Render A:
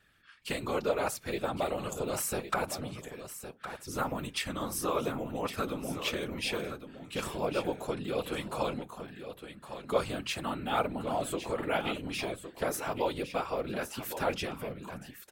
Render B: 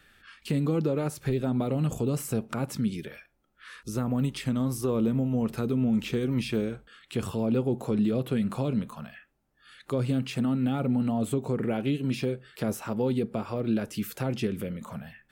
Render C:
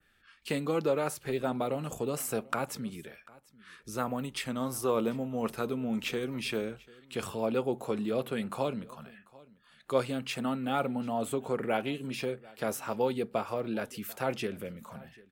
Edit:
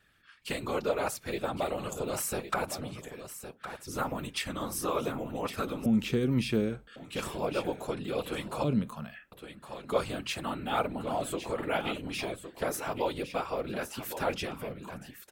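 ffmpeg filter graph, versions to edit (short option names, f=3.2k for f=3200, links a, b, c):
-filter_complex "[1:a]asplit=2[a][b];[0:a]asplit=3[c][d][e];[c]atrim=end=5.862[f];[a]atrim=start=5.858:end=6.962[g];[d]atrim=start=6.958:end=8.642[h];[b]atrim=start=8.638:end=9.322[i];[e]atrim=start=9.318[j];[f][g]acrossfade=d=0.004:c1=hsin:c2=hsin[k];[k][h]acrossfade=d=0.004:c1=hsin:c2=hsin[l];[l][i]acrossfade=d=0.004:c1=hsin:c2=hsin[m];[m][j]acrossfade=d=0.004:c1=hsin:c2=hsin"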